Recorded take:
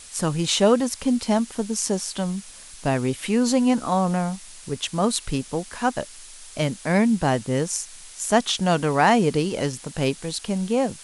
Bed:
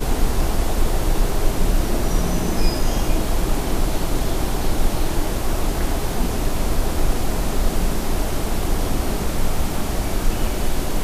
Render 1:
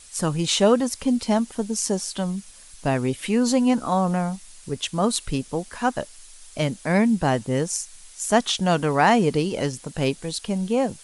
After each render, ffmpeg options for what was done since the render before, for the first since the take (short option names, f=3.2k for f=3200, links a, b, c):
-af "afftdn=nr=6:nf=-44"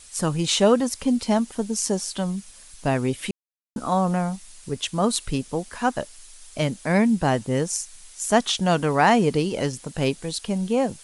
-filter_complex "[0:a]asplit=3[a][b][c];[a]atrim=end=3.31,asetpts=PTS-STARTPTS,afade=t=out:st=3.306:d=0.004:c=hsin[d];[b]atrim=start=3.31:end=3.76,asetpts=PTS-STARTPTS,volume=0[e];[c]atrim=start=3.76,asetpts=PTS-STARTPTS,afade=t=in:d=0.004:c=hsin[f];[d][e][f]concat=n=3:v=0:a=1"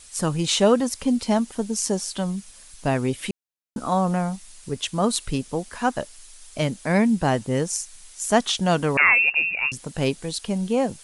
-filter_complex "[0:a]asettb=1/sr,asplit=3[a][b][c];[a]atrim=end=8.974[d];[b]atrim=start=8.97:end=9.72,asetpts=PTS-STARTPTS,afade=t=in:d=0.004:c=qsin,afade=t=out:st=0.746:d=0.004:c=qsin,lowpass=f=2.5k:t=q:w=0.5098,lowpass=f=2.5k:t=q:w=0.6013,lowpass=f=2.5k:t=q:w=0.9,lowpass=f=2.5k:t=q:w=2.563,afreqshift=-2900[e];[c]atrim=start=9.716[f];[d][e]acrossfade=d=0.004:c1=hsin:c2=qsin[g];[g][f]acrossfade=d=0.004:c1=qsin:c2=hsin"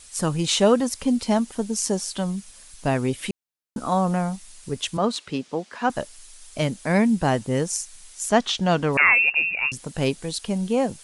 -filter_complex "[0:a]asettb=1/sr,asplit=3[a][b][c];[a]atrim=end=4.974[d];[b]atrim=start=4.97:end=5.9,asetpts=PTS-STARTPTS,afade=t=in:d=0.004:c=qsin,afade=t=out:st=0.926:d=0.004:c=qsin,highpass=200,lowpass=4.7k[e];[c]atrim=start=5.896[f];[d][e]acrossfade=d=0.004:c1=hsin:c2=qsin[g];[g][f]acrossfade=d=0.004:c1=qsin:c2=hsin,asettb=1/sr,asplit=3[h][i][j];[h]atrim=end=8.294[k];[i]atrim=start=8.29:end=8.93,asetpts=PTS-STARTPTS,afade=t=in:d=0.004:c=qsin,afade=t=out:st=0.636:d=0.004:c=qsin,lowpass=5.6k[l];[j]atrim=start=8.926[m];[k][l]acrossfade=d=0.004:c1=hsin:c2=qsin[n];[n][m]acrossfade=d=0.004:c1=qsin:c2=hsin"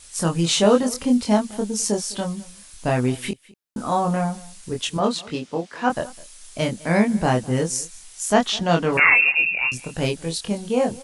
-filter_complex "[0:a]asplit=2[a][b];[b]adelay=24,volume=-3dB[c];[a][c]amix=inputs=2:normalize=0,aecho=1:1:206:0.0794"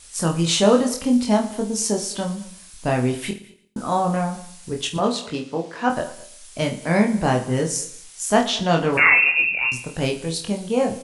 -filter_complex "[0:a]asplit=2[a][b];[b]adelay=49,volume=-11dB[c];[a][c]amix=inputs=2:normalize=0,aecho=1:1:114|228|342:0.141|0.0509|0.0183"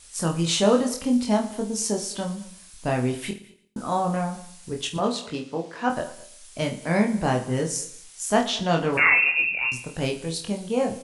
-af "volume=-3.5dB"